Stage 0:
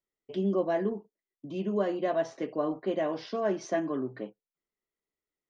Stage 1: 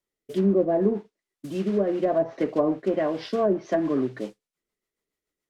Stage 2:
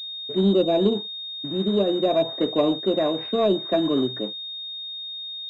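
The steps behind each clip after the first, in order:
rotary cabinet horn 0.7 Hz, later 7 Hz, at 2.56 s; modulation noise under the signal 15 dB; low-pass that closes with the level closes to 780 Hz, closed at -25.5 dBFS; trim +8.5 dB
in parallel at -9 dB: hard clipper -20.5 dBFS, distortion -11 dB; on the sum: class-D stage that switches slowly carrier 3.7 kHz

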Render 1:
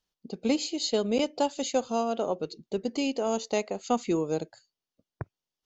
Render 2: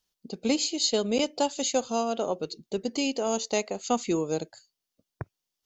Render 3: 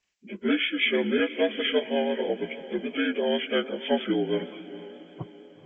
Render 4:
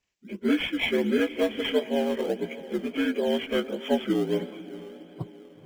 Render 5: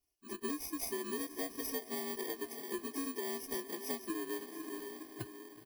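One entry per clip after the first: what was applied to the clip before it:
treble shelf 3.8 kHz +8.5 dB
frequency axis rescaled in octaves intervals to 77%; echo that smears into a reverb 469 ms, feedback 50%, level -15 dB; vibrato 6.3 Hz 29 cents; trim +2.5 dB
bass shelf 340 Hz +5 dB; in parallel at -12 dB: decimation with a swept rate 19×, swing 100% 1.5 Hz; on the sum: trim -3.5 dB
bit-reversed sample order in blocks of 32 samples; comb 2.8 ms, depth 90%; compression, threshold -30 dBFS, peak gain reduction 14 dB; trim -6.5 dB

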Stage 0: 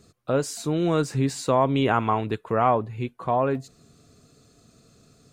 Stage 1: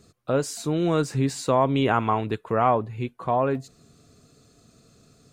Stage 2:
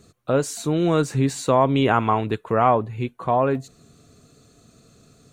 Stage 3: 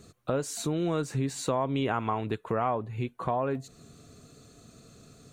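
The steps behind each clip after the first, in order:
no audible change
band-stop 5 kHz, Q 8.9; trim +3 dB
compression 2.5:1, threshold -30 dBFS, peak gain reduction 11.5 dB

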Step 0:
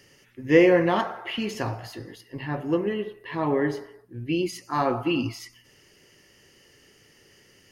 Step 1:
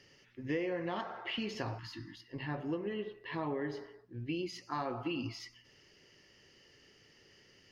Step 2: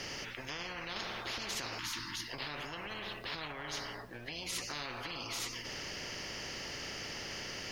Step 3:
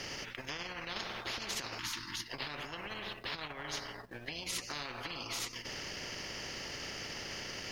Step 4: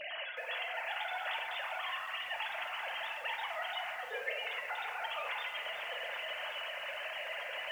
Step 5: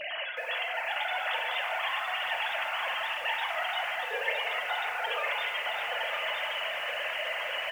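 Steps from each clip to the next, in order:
spectral selection erased 1.78–2.28 s, 350–870 Hz; resonant high shelf 6.9 kHz -12.5 dB, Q 1.5; compression 5:1, threshold -27 dBFS, peak gain reduction 14 dB; trim -6.5 dB
bass shelf 440 Hz +10 dB; peak limiter -28.5 dBFS, peak gain reduction 10.5 dB; spectrum-flattening compressor 10:1; trim +4 dB
transient shaper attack +3 dB, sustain -11 dB
formants replaced by sine waves; FDN reverb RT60 1.4 s, high-frequency decay 0.4×, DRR 2 dB; bit-crushed delay 370 ms, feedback 80%, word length 9-bit, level -11 dB
delay 962 ms -4 dB; trim +6 dB

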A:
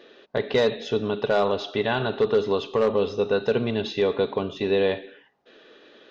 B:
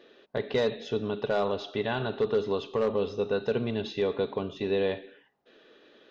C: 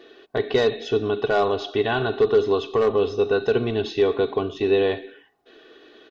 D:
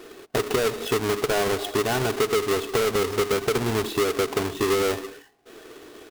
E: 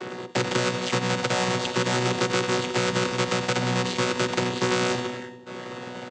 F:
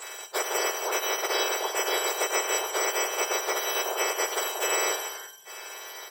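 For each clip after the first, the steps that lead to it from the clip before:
bass shelf 340 Hz +3 dB; trim -6.5 dB
comb 2.7 ms, depth 58%; trim +6 dB
square wave that keeps the level; compression, threshold -21 dBFS, peak gain reduction 9.5 dB
vocoder on a held chord bare fifth, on B2; feedback delay 93 ms, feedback 48%, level -14.5 dB; spectrum-flattening compressor 2:1
spectrum inverted on a logarithmic axis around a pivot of 1.7 kHz

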